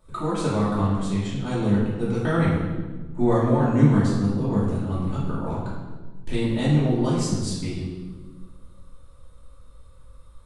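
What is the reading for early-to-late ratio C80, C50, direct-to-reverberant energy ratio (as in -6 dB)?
3.0 dB, 0.0 dB, -10.0 dB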